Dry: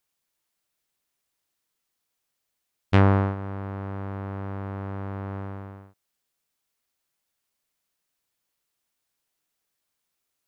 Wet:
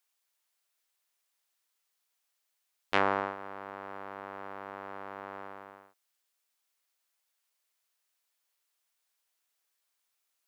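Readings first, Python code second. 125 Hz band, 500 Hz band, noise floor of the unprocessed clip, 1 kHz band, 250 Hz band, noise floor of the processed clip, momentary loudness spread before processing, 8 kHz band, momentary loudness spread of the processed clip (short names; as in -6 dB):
-27.5 dB, -5.5 dB, -81 dBFS, -1.5 dB, -15.0 dB, -81 dBFS, 16 LU, n/a, 16 LU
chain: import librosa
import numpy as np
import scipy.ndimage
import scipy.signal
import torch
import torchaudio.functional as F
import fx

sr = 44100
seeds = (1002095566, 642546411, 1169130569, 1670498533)

y = scipy.signal.sosfilt(scipy.signal.bessel(2, 700.0, 'highpass', norm='mag', fs=sr, output='sos'), x)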